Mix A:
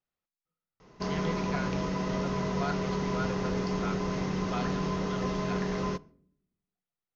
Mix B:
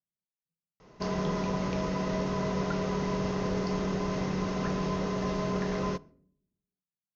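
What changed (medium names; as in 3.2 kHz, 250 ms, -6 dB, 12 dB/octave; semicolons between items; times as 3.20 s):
speech: add band-pass filter 170 Hz, Q 1.9; master: add peaking EQ 600 Hz +4 dB 0.39 oct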